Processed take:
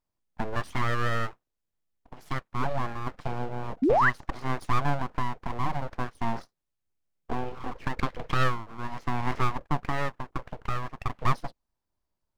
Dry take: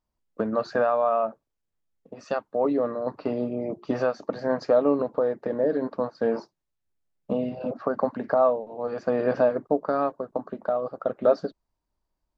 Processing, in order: full-wave rectifier; 3.82–4.1 painted sound rise 230–2100 Hz -19 dBFS; 7.98–8.44 dynamic EQ 3800 Hz, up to +6 dB, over -47 dBFS, Q 1.4; gain -2 dB

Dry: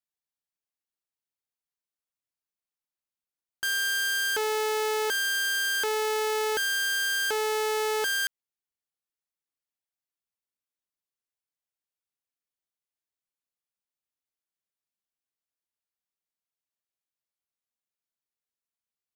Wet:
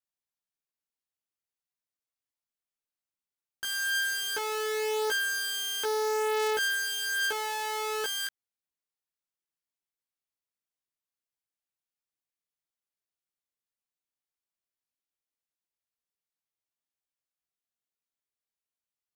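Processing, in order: chorus 0.17 Hz, delay 16 ms, depth 2.2 ms

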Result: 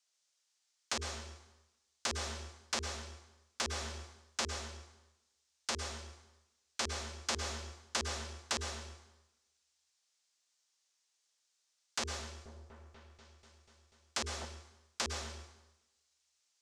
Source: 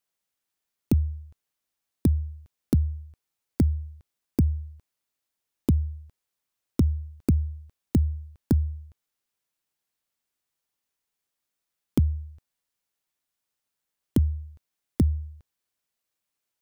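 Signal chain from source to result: wrapped overs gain 18 dB; tone controls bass -6 dB, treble +14 dB; notches 50/100/150/200/250/300/350/400/450 Hz; limiter -12 dBFS, peak gain reduction 11 dB; low shelf 410 Hz -12 dB; plate-style reverb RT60 0.99 s, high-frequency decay 0.9×, pre-delay 95 ms, DRR 4 dB; vocal rider within 3 dB 0.5 s; LPF 6700 Hz 24 dB/oct; 12.21–14.45 repeats that get brighter 0.244 s, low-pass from 750 Hz, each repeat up 1 oct, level -3 dB; gain +2.5 dB

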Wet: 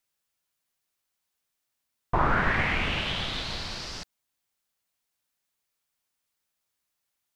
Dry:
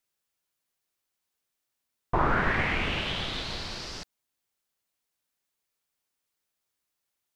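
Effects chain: bell 380 Hz -3.5 dB 1 oct; gain +1.5 dB

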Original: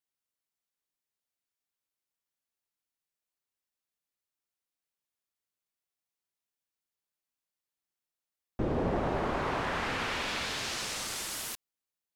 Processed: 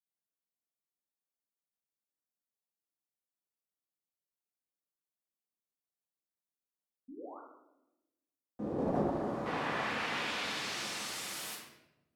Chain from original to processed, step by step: HPF 160 Hz 12 dB/oct; gate -28 dBFS, range -15 dB; 7.08–7.4 painted sound rise 240–1500 Hz -56 dBFS; bell 2500 Hz -12.5 dB 2 oct, from 9.46 s +2.5 dB; shoebox room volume 340 m³, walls mixed, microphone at 1.9 m; gain +5.5 dB

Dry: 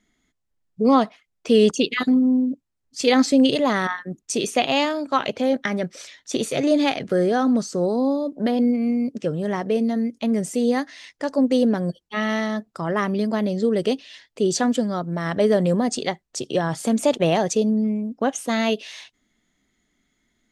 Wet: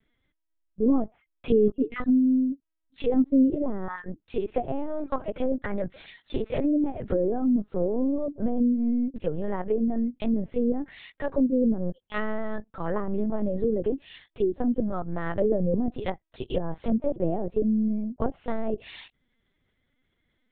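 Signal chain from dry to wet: treble ducked by the level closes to 440 Hz, closed at -16.5 dBFS; LPC vocoder at 8 kHz pitch kept; gain -3 dB

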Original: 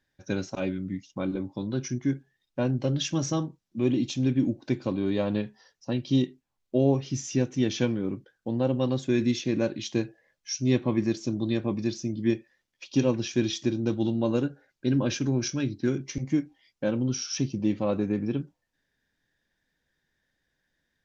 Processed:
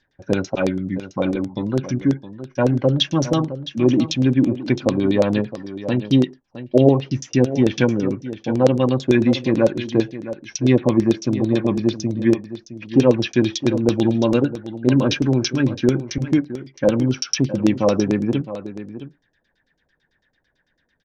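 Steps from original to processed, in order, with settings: LFO low-pass saw down 9 Hz 430–6000 Hz; echo 0.664 s -13 dB; gain +7.5 dB

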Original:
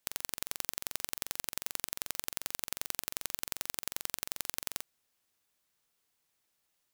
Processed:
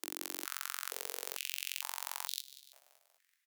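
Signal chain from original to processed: speed mistake 7.5 ips tape played at 15 ips; frequency-shifting echo 0.191 s, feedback 56%, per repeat -44 Hz, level -16.5 dB; stepped high-pass 2.2 Hz 320–3800 Hz

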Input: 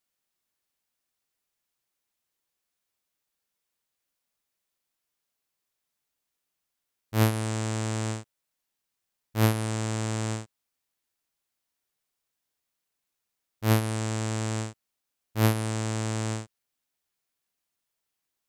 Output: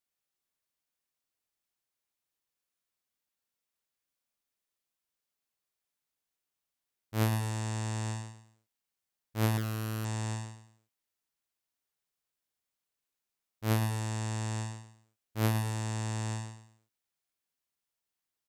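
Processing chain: on a send: feedback echo 0.108 s, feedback 33%, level -6 dB; 9.57–10.05 on the sum: Doppler distortion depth 0.98 ms; gain -6.5 dB

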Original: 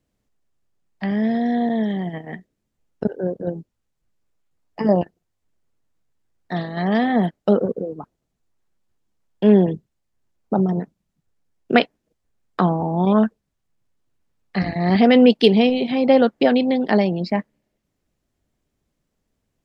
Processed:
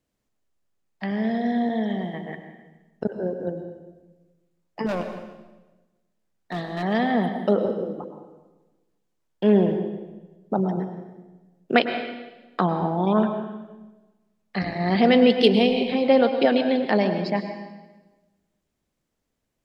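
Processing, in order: low shelf 240 Hz -6 dB; 4.86–6.83 hard clip -22 dBFS, distortion -19 dB; on a send: reverb RT60 1.2 s, pre-delay 97 ms, DRR 7 dB; on the sum: gain -2 dB

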